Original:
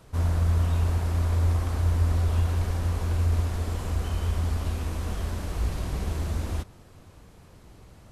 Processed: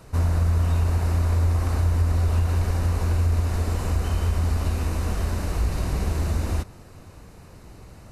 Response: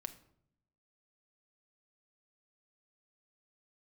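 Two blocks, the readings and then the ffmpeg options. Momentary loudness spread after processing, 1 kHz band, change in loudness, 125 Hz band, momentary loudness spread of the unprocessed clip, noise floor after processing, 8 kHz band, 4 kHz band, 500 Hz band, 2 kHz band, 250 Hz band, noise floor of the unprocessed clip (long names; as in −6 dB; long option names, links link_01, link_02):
5 LU, +4.0 dB, +3.0 dB, +3.0 dB, 7 LU, −46 dBFS, +4.0 dB, +2.5 dB, +4.0 dB, +4.0 dB, +4.0 dB, −52 dBFS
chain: -af "acompressor=threshold=-24dB:ratio=2.5,bandreject=frequency=3300:width=7.1,volume=5.5dB"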